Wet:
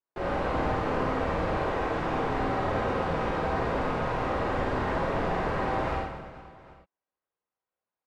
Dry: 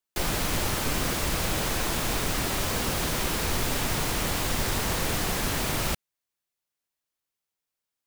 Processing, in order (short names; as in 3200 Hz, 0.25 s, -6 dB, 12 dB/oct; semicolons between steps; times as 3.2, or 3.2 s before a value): LPF 1100 Hz 12 dB/oct; low shelf 240 Hz -10.5 dB; on a send: reverse bouncing-ball echo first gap 50 ms, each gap 1.6×, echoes 5; on the sum: non-linear reverb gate 0.13 s flat, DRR -3 dB